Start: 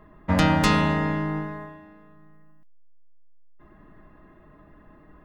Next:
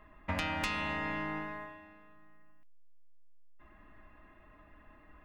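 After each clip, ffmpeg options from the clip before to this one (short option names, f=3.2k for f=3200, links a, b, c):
-af "equalizer=f=160:t=o:w=0.67:g=-12,equalizer=f=400:t=o:w=0.67:g=-8,equalizer=f=2.5k:t=o:w=0.67:g=9,acompressor=threshold=-27dB:ratio=6,volume=-4.5dB"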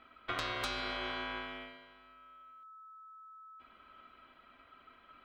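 -af "aeval=exprs='val(0)*sin(2*PI*1300*n/s)':c=same"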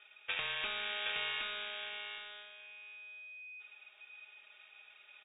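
-filter_complex "[0:a]asplit=2[a][b];[b]aecho=0:1:770|1540|2310:0.596|0.0953|0.0152[c];[a][c]amix=inputs=2:normalize=0,lowpass=f=3.2k:t=q:w=0.5098,lowpass=f=3.2k:t=q:w=0.6013,lowpass=f=3.2k:t=q:w=0.9,lowpass=f=3.2k:t=q:w=2.563,afreqshift=-3800"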